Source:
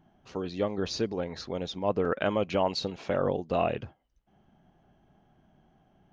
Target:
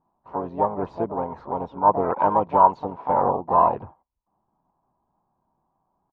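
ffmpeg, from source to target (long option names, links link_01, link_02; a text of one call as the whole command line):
ffmpeg -i in.wav -filter_complex "[0:a]asplit=3[link_01][link_02][link_03];[link_02]asetrate=35002,aresample=44100,atempo=1.25992,volume=-15dB[link_04];[link_03]asetrate=66075,aresample=44100,atempo=0.66742,volume=-6dB[link_05];[link_01][link_04][link_05]amix=inputs=3:normalize=0,lowpass=frequency=960:width_type=q:width=7.6,agate=range=-15dB:threshold=-53dB:ratio=16:detection=peak" out.wav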